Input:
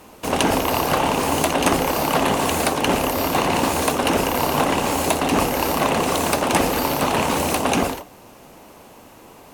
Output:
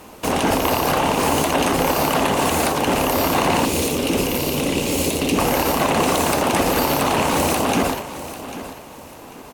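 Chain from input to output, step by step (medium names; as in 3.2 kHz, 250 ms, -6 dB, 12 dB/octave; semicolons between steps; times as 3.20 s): peak limiter -12 dBFS, peak gain reduction 10 dB; 3.65–5.38 s: high-order bell 1.1 kHz -12 dB; feedback delay 794 ms, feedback 28%, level -13.5 dB; trim +3.5 dB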